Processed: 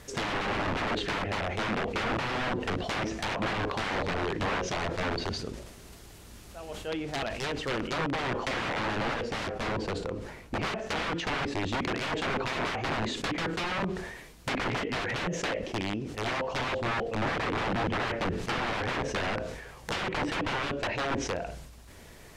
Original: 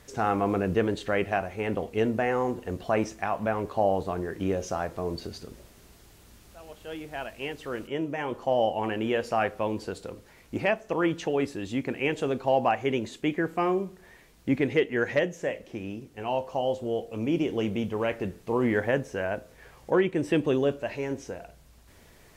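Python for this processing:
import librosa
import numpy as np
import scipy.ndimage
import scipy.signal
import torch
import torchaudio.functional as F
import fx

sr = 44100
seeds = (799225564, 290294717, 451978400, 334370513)

y = (np.mod(10.0 ** (28.0 / 20.0) * x + 1.0, 2.0) - 1.0) / 10.0 ** (28.0 / 20.0)
y = fx.high_shelf(y, sr, hz=2200.0, db=-9.0, at=(9.14, 10.63))
y = fx.env_lowpass_down(y, sr, base_hz=2400.0, full_db=-30.0)
y = fx.sustainer(y, sr, db_per_s=48.0)
y = F.gain(torch.from_numpy(y), 4.5).numpy()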